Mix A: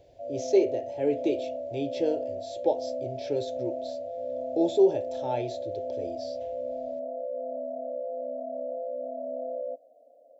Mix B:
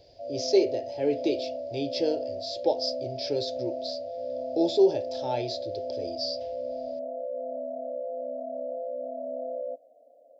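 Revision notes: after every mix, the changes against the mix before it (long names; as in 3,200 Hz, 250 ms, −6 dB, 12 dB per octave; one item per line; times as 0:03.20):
speech: add low-pass with resonance 4,900 Hz, resonance Q 10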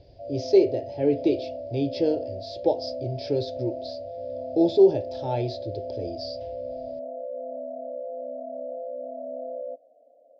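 speech: add low-shelf EQ 290 Hz +12 dB
master: add high-frequency loss of the air 150 metres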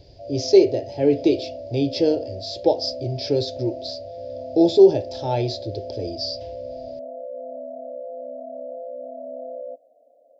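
speech +4.0 dB
master: remove high-frequency loss of the air 150 metres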